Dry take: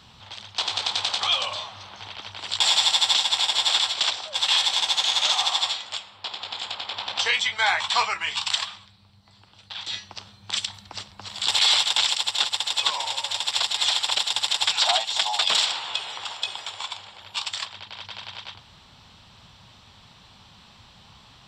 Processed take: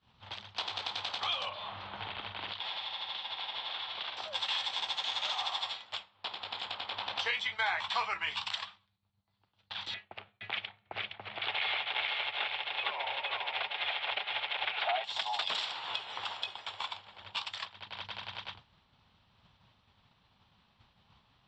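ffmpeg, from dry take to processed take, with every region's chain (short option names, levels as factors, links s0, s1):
-filter_complex "[0:a]asettb=1/sr,asplit=3[s0][s1][s2];[s0]atrim=end=1.494[s3];[s1]atrim=start=1.49:end=4.17,asetpts=PTS-STARTPTS,afade=t=in:d=0.004:c=qsin,afade=t=out:st=2.676:d=0.004:c=qsin,lowpass=f=4000:w=0.5412,lowpass=f=4000:w=1.3066,asplit=2[s4][s5];[s5]adelay=45,volume=0.398[s6];[s4][s6]amix=inputs=2:normalize=0,atrim=end_sample=118188,acompressor=threshold=0.0251:ratio=3:attack=3.2:release=140:knee=1:detection=peak[s7];[s2]atrim=start=4.166[s8];[s3][s7]acrossfade=d=0.004:c1=hsin:c2=qsin[s9];[s9][s8]acrossfade=d=0.004:c1=qsin:c2=hsin,asettb=1/sr,asplit=3[s10][s11][s12];[s10]atrim=end=9.944[s13];[s11]atrim=start=9.94:end=15.04,asetpts=PTS-STARTPTS,afade=t=in:d=0.004:c=qsin,afade=t=out:st=5.096:d=0.004:c=qsin,highpass=130,equalizer=f=180:t=q:w=4:g=-8,equalizer=f=280:t=q:w=4:g=-8,equalizer=f=400:t=q:w=4:g=3,equalizer=f=690:t=q:w=4:g=4,equalizer=f=1000:t=q:w=4:g=-6,equalizer=f=2300:t=q:w=4:g=6,lowpass=f=2900:w=0.5412,lowpass=f=2900:w=1.3066,aecho=1:1:465:0.596,atrim=end_sample=224910[s14];[s12]atrim=start=15.036[s15];[s13][s14]acrossfade=d=0.004:c1=hsin:c2=qsin[s16];[s16][s15]acrossfade=d=0.004:c1=qsin:c2=hsin,acompressor=threshold=0.0126:ratio=3,lowpass=3300,agate=range=0.0224:threshold=0.0112:ratio=3:detection=peak,volume=1.78"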